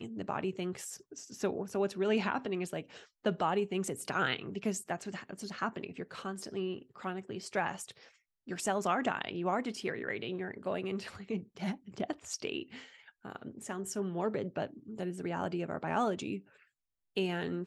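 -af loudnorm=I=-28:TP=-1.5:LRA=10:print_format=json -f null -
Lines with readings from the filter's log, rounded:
"input_i" : "-36.3",
"input_tp" : "-16.9",
"input_lra" : "4.4",
"input_thresh" : "-46.6",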